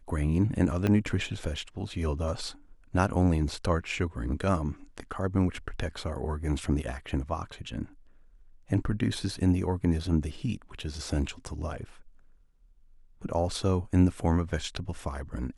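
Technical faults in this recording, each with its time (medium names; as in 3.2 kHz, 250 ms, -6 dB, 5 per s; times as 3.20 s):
0.87 s: dropout 2.1 ms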